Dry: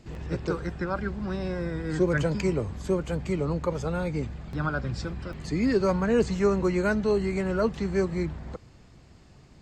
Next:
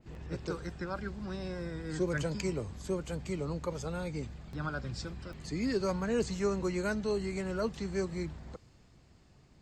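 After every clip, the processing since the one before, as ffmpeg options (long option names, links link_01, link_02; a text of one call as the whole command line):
ffmpeg -i in.wav -af "adynamicequalizer=threshold=0.00355:dfrequency=3200:dqfactor=0.7:tfrequency=3200:tqfactor=0.7:attack=5:release=100:ratio=0.375:range=4:mode=boostabove:tftype=highshelf,volume=-8dB" out.wav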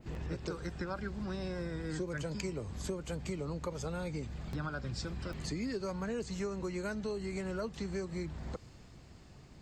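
ffmpeg -i in.wav -af "acompressor=threshold=-41dB:ratio=6,volume=6dB" out.wav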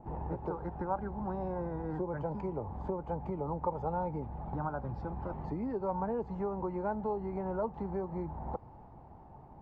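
ffmpeg -i in.wav -af "lowpass=frequency=860:width_type=q:width=8.3" out.wav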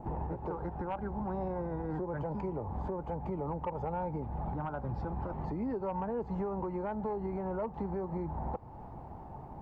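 ffmpeg -i in.wav -af "aeval=exprs='0.112*sin(PI/2*1.41*val(0)/0.112)':channel_layout=same,alimiter=level_in=4dB:limit=-24dB:level=0:latency=1:release=308,volume=-4dB" out.wav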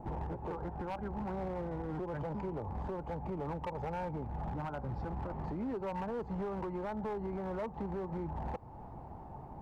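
ffmpeg -i in.wav -af "asoftclip=type=hard:threshold=-32dB,volume=-1.5dB" out.wav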